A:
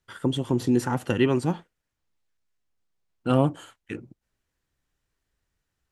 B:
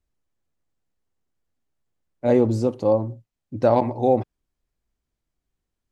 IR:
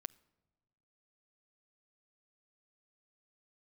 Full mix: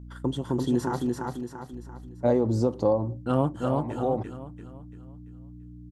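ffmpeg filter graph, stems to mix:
-filter_complex "[0:a]agate=range=-27dB:threshold=-43dB:ratio=16:detection=peak,aeval=exprs='val(0)+0.0126*(sin(2*PI*60*n/s)+sin(2*PI*2*60*n/s)/2+sin(2*PI*3*60*n/s)/3+sin(2*PI*4*60*n/s)/4+sin(2*PI*5*60*n/s)/5)':channel_layout=same,volume=-3.5dB,asplit=3[link_01][link_02][link_03];[link_01]atrim=end=1.07,asetpts=PTS-STARTPTS,afade=type=out:start_time=1.066:duration=0.004:curve=hsin[link_04];[link_02]atrim=start=1.07:end=1.73,asetpts=PTS-STARTPTS,volume=0[link_05];[link_03]atrim=start=1.73,asetpts=PTS-STARTPTS,afade=type=in:duration=0.004:curve=hsin[link_06];[link_04][link_05][link_06]concat=n=3:v=0:a=1,asplit=3[link_07][link_08][link_09];[link_08]volume=-3dB[link_10];[1:a]acompressor=threshold=-20dB:ratio=6,volume=2.5dB,asplit=2[link_11][link_12];[link_12]volume=-22.5dB[link_13];[link_09]apad=whole_len=260737[link_14];[link_11][link_14]sidechaincompress=threshold=-41dB:ratio=8:attack=40:release=500[link_15];[2:a]atrim=start_sample=2205[link_16];[link_13][link_16]afir=irnorm=-1:irlink=0[link_17];[link_10]aecho=0:1:340|680|1020|1360|1700|2040:1|0.43|0.185|0.0795|0.0342|0.0147[link_18];[link_07][link_15][link_17][link_18]amix=inputs=4:normalize=0,equalizer=frequency=1000:width_type=o:width=0.67:gain=3,equalizer=frequency=2500:width_type=o:width=0.67:gain=-9,equalizer=frequency=10000:width_type=o:width=0.67:gain=-4"

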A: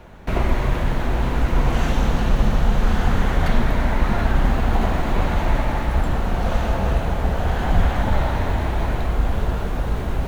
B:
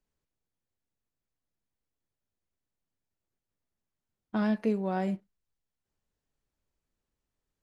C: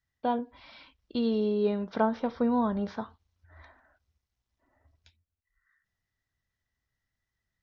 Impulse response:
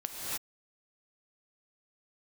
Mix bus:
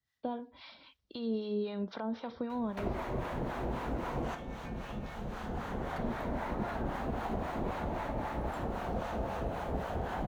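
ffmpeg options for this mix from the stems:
-filter_complex "[0:a]adelay=2500,volume=-2dB[link_01];[1:a]equalizer=frequency=1300:width_type=o:width=0.77:gain=15,aeval=exprs='val(0)*sin(2*PI*2000*n/s)':channel_layout=same,volume=-17.5dB,asplit=2[link_02][link_03];[2:a]equalizer=frequency=3800:width_type=o:width=0.86:gain=5.5,alimiter=limit=-23dB:level=0:latency=1,volume=1.5dB[link_04];[link_03]apad=whole_len=563197[link_05];[link_01][link_05]sidechaincompress=threshold=-51dB:ratio=5:attack=8.6:release=1490[link_06];[link_06][link_02][link_04]amix=inputs=3:normalize=0,highpass=frequency=110:poles=1,acrossover=split=230|1200[link_07][link_08][link_09];[link_07]acompressor=threshold=-36dB:ratio=4[link_10];[link_08]acompressor=threshold=-32dB:ratio=4[link_11];[link_09]acompressor=threshold=-49dB:ratio=4[link_12];[link_10][link_11][link_12]amix=inputs=3:normalize=0,acrossover=split=680[link_13][link_14];[link_13]aeval=exprs='val(0)*(1-0.7/2+0.7/2*cos(2*PI*3.8*n/s))':channel_layout=same[link_15];[link_14]aeval=exprs='val(0)*(1-0.7/2-0.7/2*cos(2*PI*3.8*n/s))':channel_layout=same[link_16];[link_15][link_16]amix=inputs=2:normalize=0"

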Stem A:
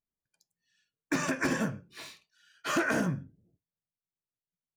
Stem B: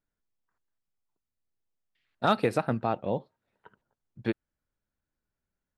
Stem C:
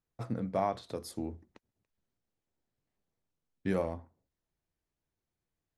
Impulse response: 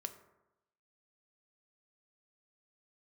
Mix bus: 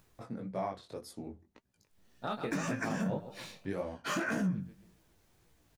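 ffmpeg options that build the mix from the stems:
-filter_complex "[0:a]equalizer=frequency=190:width_type=o:width=0.42:gain=13,adelay=1400,volume=1dB[link_01];[1:a]volume=2.5dB,asplit=2[link_02][link_03];[link_03]volume=-18dB[link_04];[2:a]acompressor=mode=upward:threshold=-42dB:ratio=2.5,flanger=delay=1.9:depth=3.9:regen=-69:speed=1.1:shape=triangular,volume=2.5dB,asplit=2[link_05][link_06];[link_06]apad=whole_len=254503[link_07];[link_02][link_07]sidechaincompress=threshold=-55dB:ratio=8:attack=16:release=1350[link_08];[link_04]aecho=0:1:135|270|405|540|675|810:1|0.44|0.194|0.0852|0.0375|0.0165[link_09];[link_01][link_08][link_05][link_09]amix=inputs=4:normalize=0,flanger=delay=15.5:depth=6.5:speed=1.8,alimiter=level_in=0.5dB:limit=-24dB:level=0:latency=1:release=147,volume=-0.5dB"

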